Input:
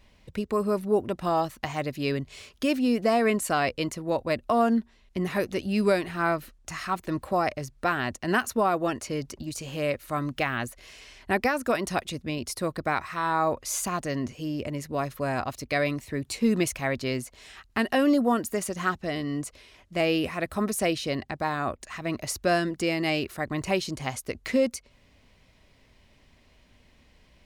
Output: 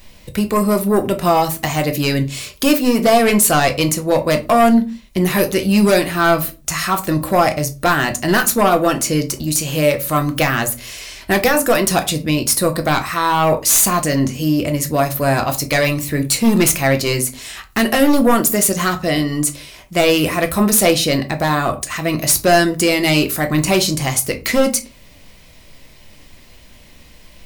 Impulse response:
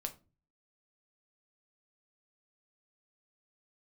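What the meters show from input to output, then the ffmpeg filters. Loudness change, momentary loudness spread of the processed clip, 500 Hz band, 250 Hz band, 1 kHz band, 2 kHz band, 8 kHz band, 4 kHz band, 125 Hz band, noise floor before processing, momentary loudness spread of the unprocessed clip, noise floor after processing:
+12.0 dB, 7 LU, +10.5 dB, +11.0 dB, +10.5 dB, +11.0 dB, +18.5 dB, +14.5 dB, +13.5 dB, -60 dBFS, 9 LU, -44 dBFS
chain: -filter_complex "[0:a]aemphasis=mode=production:type=50fm,aeval=exprs='0.501*sin(PI/2*3.55*val(0)/0.501)':c=same[a];[1:a]atrim=start_sample=2205,afade=t=out:st=0.33:d=0.01,atrim=end_sample=14994[b];[a][b]afir=irnorm=-1:irlink=0,volume=-1dB"

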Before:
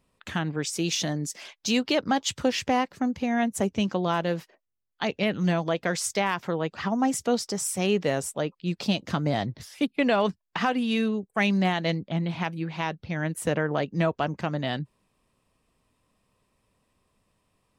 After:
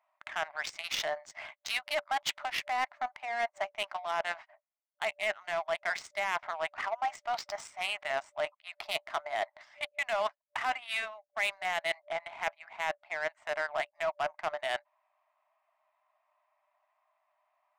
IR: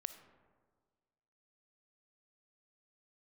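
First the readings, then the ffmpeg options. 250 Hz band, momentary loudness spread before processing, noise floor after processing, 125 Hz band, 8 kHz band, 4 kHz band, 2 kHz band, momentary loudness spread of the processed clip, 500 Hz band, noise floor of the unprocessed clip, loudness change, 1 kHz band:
-33.0 dB, 7 LU, -82 dBFS, -33.5 dB, -13.0 dB, -5.5 dB, -1.5 dB, 5 LU, -8.0 dB, -76 dBFS, -7.5 dB, -4.0 dB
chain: -af "afftfilt=real='re*between(b*sr/4096,590,8900)':imag='im*between(b*sr/4096,590,8900)':win_size=4096:overlap=0.75,adynamicsmooth=sensitivity=3:basefreq=1.1k,equalizer=f=2.1k:t=o:w=0.22:g=8,areverse,acompressor=threshold=-38dB:ratio=4,areverse,volume=7dB"

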